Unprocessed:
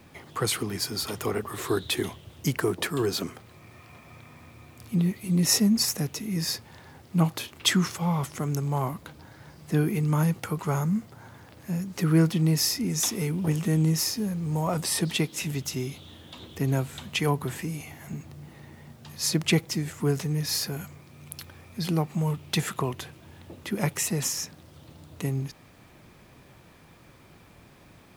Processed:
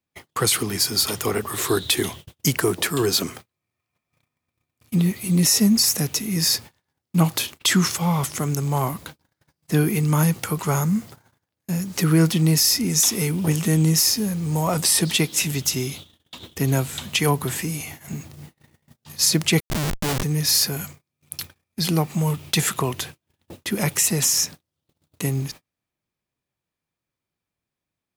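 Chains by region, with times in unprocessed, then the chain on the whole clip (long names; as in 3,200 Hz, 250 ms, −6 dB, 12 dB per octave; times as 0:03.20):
0:19.60–0:20.23: low-pass with resonance 2,100 Hz, resonance Q 1.8 + comparator with hysteresis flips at −32 dBFS
whole clip: noise gate −43 dBFS, range −39 dB; high-shelf EQ 2,900 Hz +9 dB; boost into a limiter +11.5 dB; level −7 dB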